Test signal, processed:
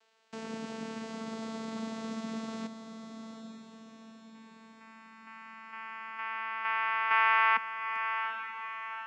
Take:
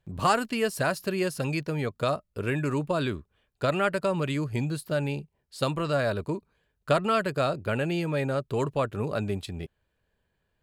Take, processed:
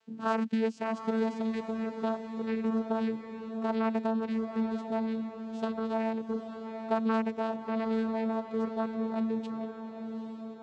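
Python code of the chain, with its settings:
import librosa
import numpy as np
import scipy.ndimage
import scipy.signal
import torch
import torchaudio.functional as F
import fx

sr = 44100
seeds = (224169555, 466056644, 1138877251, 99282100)

y = fx.dmg_noise_band(x, sr, seeds[0], low_hz=390.0, high_hz=5400.0, level_db=-64.0)
y = fx.vocoder(y, sr, bands=8, carrier='saw', carrier_hz=223.0)
y = fx.echo_diffused(y, sr, ms=831, feedback_pct=48, wet_db=-8.0)
y = y * 10.0 ** (-4.0 / 20.0)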